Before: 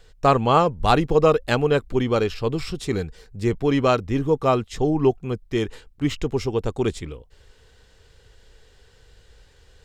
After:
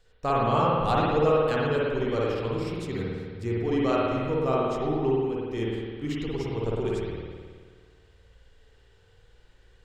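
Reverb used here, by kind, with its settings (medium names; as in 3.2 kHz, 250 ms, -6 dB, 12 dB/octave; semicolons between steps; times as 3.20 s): spring tank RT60 1.7 s, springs 53 ms, chirp 65 ms, DRR -5.5 dB; trim -11.5 dB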